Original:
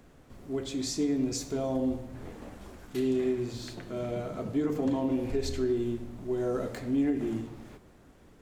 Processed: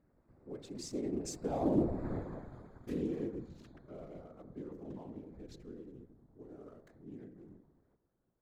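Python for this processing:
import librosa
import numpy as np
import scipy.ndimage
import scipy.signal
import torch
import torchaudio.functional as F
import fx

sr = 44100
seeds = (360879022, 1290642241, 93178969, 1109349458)

y = fx.wiener(x, sr, points=15)
y = fx.doppler_pass(y, sr, speed_mps=18, closest_m=3.0, pass_at_s=2.05)
y = fx.whisperise(y, sr, seeds[0])
y = y * 10.0 ** (6.5 / 20.0)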